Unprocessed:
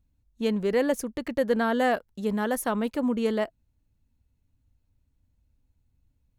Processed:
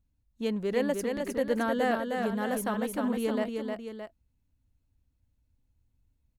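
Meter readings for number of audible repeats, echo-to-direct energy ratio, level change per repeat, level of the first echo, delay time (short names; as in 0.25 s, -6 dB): 2, -3.5 dB, -5.5 dB, -4.5 dB, 0.309 s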